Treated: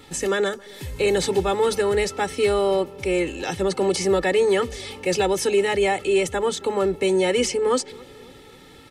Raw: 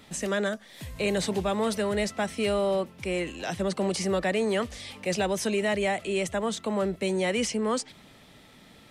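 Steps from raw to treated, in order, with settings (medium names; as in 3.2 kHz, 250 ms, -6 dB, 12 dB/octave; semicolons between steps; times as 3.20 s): peaking EQ 230 Hz +12 dB 0.55 oct; comb 2.3 ms, depth 100%; on a send: filtered feedback delay 270 ms, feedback 64%, low-pass 1 kHz, level -22 dB; on the sum: trim +2.5 dB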